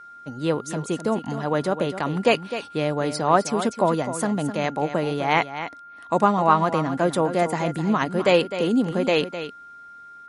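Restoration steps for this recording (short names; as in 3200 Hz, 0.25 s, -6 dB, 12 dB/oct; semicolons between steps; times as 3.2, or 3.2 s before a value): notch 1400 Hz, Q 30; inverse comb 0.256 s -11 dB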